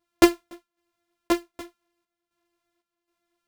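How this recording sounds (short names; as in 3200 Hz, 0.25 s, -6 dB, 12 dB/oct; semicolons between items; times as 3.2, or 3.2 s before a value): a buzz of ramps at a fixed pitch in blocks of 128 samples; chopped level 1.3 Hz, depth 60%, duty 65%; a shimmering, thickened sound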